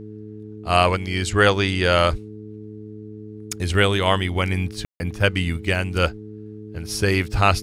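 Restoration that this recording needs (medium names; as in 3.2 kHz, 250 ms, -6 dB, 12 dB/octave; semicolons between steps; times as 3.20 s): de-hum 106.6 Hz, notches 4; room tone fill 4.85–5.00 s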